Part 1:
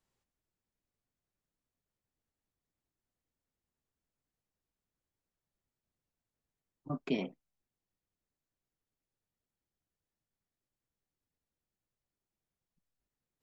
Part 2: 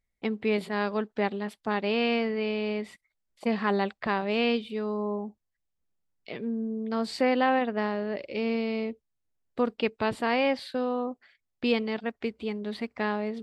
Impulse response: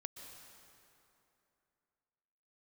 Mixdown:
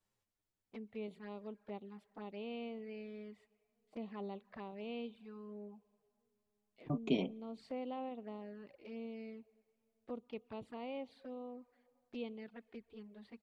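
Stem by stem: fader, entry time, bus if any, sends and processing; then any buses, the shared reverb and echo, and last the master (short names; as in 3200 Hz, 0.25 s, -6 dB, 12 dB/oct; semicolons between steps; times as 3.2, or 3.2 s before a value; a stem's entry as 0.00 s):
+0.5 dB, 0.00 s, send -23 dB, dry
-17.5 dB, 0.50 s, send -14.5 dB, high shelf 2800 Hz -8 dB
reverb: on, RT60 2.9 s, pre-delay 0.113 s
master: envelope flanger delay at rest 10 ms, full sweep at -41.5 dBFS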